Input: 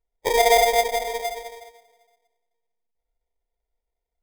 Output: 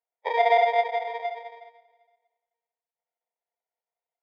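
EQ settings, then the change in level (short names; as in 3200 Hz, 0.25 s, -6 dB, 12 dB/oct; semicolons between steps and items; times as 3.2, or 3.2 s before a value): Gaussian blur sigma 2.7 samples; HPF 580 Hz 24 dB/oct; air absorption 120 m; 0.0 dB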